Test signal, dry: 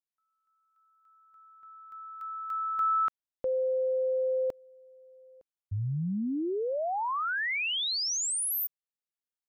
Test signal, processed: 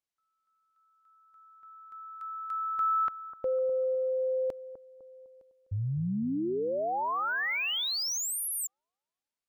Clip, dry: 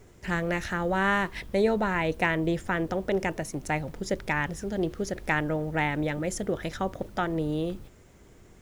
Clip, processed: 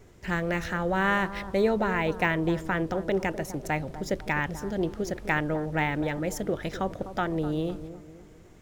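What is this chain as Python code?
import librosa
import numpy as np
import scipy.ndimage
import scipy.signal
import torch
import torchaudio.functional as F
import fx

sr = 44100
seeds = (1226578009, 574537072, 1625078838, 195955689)

p1 = x + fx.echo_bbd(x, sr, ms=252, stages=2048, feedback_pct=41, wet_db=-12.5, dry=0)
y = np.interp(np.arange(len(p1)), np.arange(len(p1))[::2], p1[::2])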